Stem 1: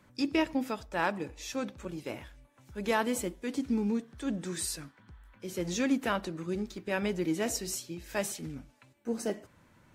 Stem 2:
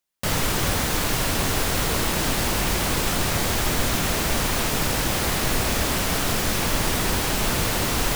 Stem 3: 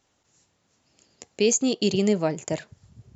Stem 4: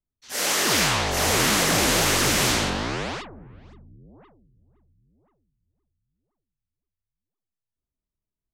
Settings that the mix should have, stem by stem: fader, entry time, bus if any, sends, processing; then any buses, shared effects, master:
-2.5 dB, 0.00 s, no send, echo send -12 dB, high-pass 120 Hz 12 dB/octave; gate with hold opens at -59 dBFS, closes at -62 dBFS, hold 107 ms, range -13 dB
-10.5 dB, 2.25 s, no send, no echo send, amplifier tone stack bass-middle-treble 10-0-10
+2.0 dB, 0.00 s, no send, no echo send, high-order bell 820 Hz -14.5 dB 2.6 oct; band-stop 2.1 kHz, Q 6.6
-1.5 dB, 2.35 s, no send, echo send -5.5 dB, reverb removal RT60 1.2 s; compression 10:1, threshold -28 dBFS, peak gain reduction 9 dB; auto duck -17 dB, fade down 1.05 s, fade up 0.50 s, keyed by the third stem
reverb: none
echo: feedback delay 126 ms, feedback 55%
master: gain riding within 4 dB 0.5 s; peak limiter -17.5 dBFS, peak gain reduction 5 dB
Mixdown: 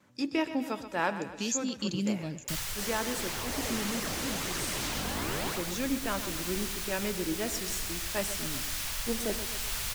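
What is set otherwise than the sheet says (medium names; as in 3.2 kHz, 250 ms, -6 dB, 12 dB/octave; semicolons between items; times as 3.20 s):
stem 3 +2.0 dB -> -9.0 dB; master: missing peak limiter -17.5 dBFS, peak gain reduction 5 dB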